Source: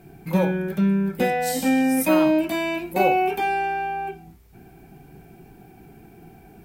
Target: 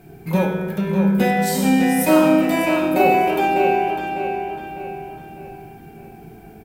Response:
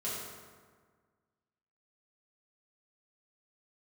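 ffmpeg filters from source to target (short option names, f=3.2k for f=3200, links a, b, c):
-filter_complex "[0:a]asplit=2[a][b];[b]adelay=601,lowpass=f=4.9k:p=1,volume=-6dB,asplit=2[c][d];[d]adelay=601,lowpass=f=4.9k:p=1,volume=0.44,asplit=2[e][f];[f]adelay=601,lowpass=f=4.9k:p=1,volume=0.44,asplit=2[g][h];[h]adelay=601,lowpass=f=4.9k:p=1,volume=0.44,asplit=2[i][j];[j]adelay=601,lowpass=f=4.9k:p=1,volume=0.44[k];[a][c][e][g][i][k]amix=inputs=6:normalize=0,asplit=2[l][m];[1:a]atrim=start_sample=2205[n];[m][n]afir=irnorm=-1:irlink=0,volume=-5dB[o];[l][o]amix=inputs=2:normalize=0"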